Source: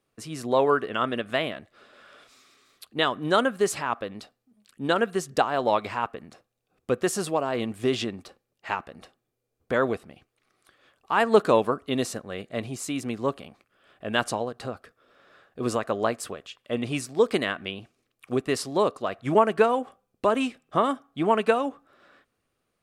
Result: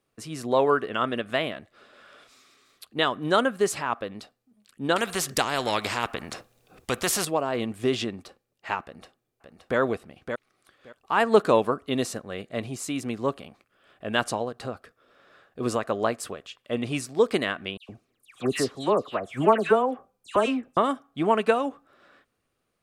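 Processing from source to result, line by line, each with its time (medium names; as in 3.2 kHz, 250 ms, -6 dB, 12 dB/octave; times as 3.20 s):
4.96–7.25 s: spectrum-flattening compressor 2:1
8.83–9.78 s: echo throw 570 ms, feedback 15%, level -6 dB
17.77–20.77 s: phase dispersion lows, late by 119 ms, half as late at 2.4 kHz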